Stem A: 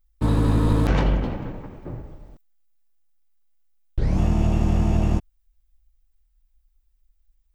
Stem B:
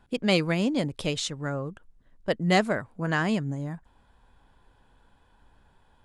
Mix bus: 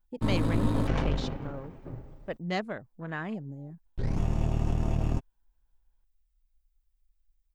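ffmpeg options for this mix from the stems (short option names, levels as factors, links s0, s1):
-filter_complex "[0:a]aeval=exprs='(tanh(5.62*val(0)+0.7)-tanh(0.7))/5.62':c=same,aecho=1:1:7.5:0.34,volume=0.631[s0];[1:a]afwtdn=0.0158,volume=0.335[s1];[s0][s1]amix=inputs=2:normalize=0"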